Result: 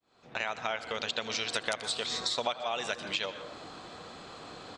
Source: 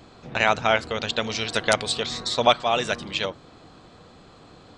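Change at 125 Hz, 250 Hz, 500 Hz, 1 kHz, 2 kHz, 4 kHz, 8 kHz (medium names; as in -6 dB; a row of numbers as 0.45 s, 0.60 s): -15.5 dB, -12.5 dB, -12.0 dB, -12.0 dB, -9.5 dB, -7.0 dB, -6.0 dB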